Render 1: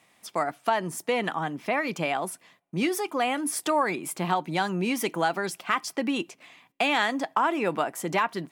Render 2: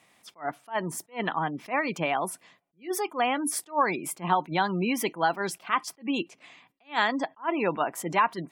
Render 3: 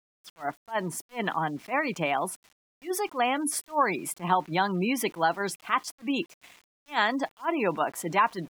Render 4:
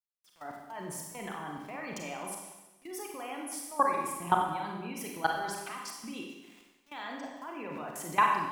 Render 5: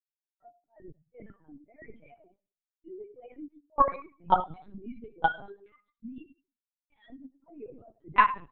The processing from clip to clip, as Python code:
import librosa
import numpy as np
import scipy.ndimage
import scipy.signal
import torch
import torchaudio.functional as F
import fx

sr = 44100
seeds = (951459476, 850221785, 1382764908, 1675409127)

y1 = fx.spec_gate(x, sr, threshold_db=-30, keep='strong')
y1 = fx.dynamic_eq(y1, sr, hz=990.0, q=4.2, threshold_db=-42.0, ratio=4.0, max_db=5)
y1 = fx.attack_slew(y1, sr, db_per_s=290.0)
y2 = np.where(np.abs(y1) >= 10.0 ** (-49.0 / 20.0), y1, 0.0)
y3 = fx.level_steps(y2, sr, step_db=21)
y3 = fx.rev_schroeder(y3, sr, rt60_s=1.1, comb_ms=31, drr_db=0.0)
y4 = fx.bin_expand(y3, sr, power=3.0)
y4 = fx.env_lowpass(y4, sr, base_hz=1000.0, full_db=-28.5)
y4 = fx.lpc_vocoder(y4, sr, seeds[0], excitation='pitch_kept', order=10)
y4 = y4 * 10.0 ** (8.0 / 20.0)